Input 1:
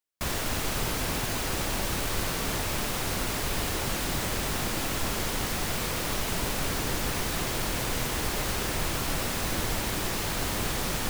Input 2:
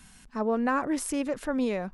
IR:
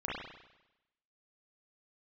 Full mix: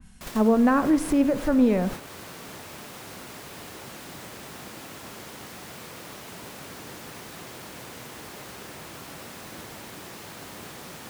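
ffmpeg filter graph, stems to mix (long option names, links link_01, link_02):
-filter_complex "[0:a]highpass=130,volume=-2.5dB[link_01];[1:a]lowshelf=frequency=290:gain=11.5,volume=1.5dB,asplit=3[link_02][link_03][link_04];[link_03]volume=-16.5dB[link_05];[link_04]apad=whole_len=489293[link_06];[link_01][link_06]sidechaincompress=threshold=-28dB:ratio=4:attack=7.9:release=189[link_07];[2:a]atrim=start_sample=2205[link_08];[link_05][link_08]afir=irnorm=-1:irlink=0[link_09];[link_07][link_02][link_09]amix=inputs=3:normalize=0,agate=range=-7dB:threshold=-31dB:ratio=16:detection=peak,adynamicequalizer=threshold=0.00562:dfrequency=2400:dqfactor=0.7:tfrequency=2400:tqfactor=0.7:attack=5:release=100:ratio=0.375:range=3:mode=cutabove:tftype=highshelf"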